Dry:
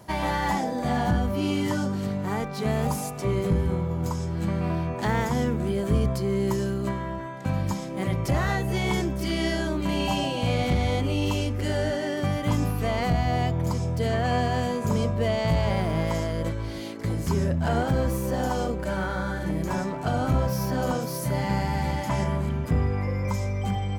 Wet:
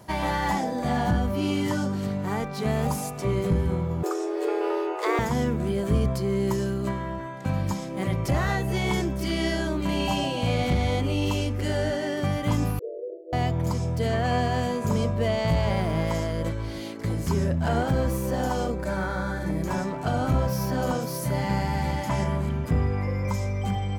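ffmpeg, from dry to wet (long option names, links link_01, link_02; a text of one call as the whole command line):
ffmpeg -i in.wav -filter_complex "[0:a]asettb=1/sr,asplit=3[link_01][link_02][link_03];[link_01]atrim=end=4.034[link_04];[link_02]atrim=start=4.03:end=5.19,asetpts=PTS-STARTPTS,afade=type=in:duration=0.004:curve=qsin,afade=type=out:start_time=1.156:duration=0.004:curve=qsin,afreqshift=250[link_05];[link_03]atrim=start=5.186[link_06];[link_04][link_05]acrossfade=duration=0.004:curve1=hsin:curve2=qsin[link_07];[link_07][link_06]acrossfade=duration=0.004:curve1=qsin:curve2=hsin,asettb=1/sr,asplit=3[link_08][link_09][link_10];[link_08]atrim=end=12.794[link_11];[link_09]atrim=start=12.79:end=13.33,asetpts=PTS-STARTPTS,afade=type=in:duration=0.004:curve=qsin,afade=type=out:start_time=0.536:duration=0.004:curve=qsin,asuperpass=centerf=450:order=20:qfactor=1.6[link_12];[link_10]atrim=start=13.326[link_13];[link_11][link_12]acrossfade=duration=0.004:curve1=hsin:curve2=qsin[link_14];[link_14][link_13]acrossfade=duration=0.004:curve1=qsin:curve2=hsin,asettb=1/sr,asplit=3[link_15][link_16][link_17];[link_15]atrim=end=18.714[link_18];[link_16]atrim=start=18.71:end=19.64,asetpts=PTS-STARTPTS,afade=type=in:duration=0.004:curve=qsin,afade=type=out:start_time=0.926:duration=0.004:curve=qsin,bandreject=frequency=3000:width=5.5[link_19];[link_17]atrim=start=19.636[link_20];[link_18][link_19]acrossfade=duration=0.004:curve1=hsin:curve2=qsin[link_21];[link_21][link_20]acrossfade=duration=0.004:curve1=qsin:curve2=hsin" out.wav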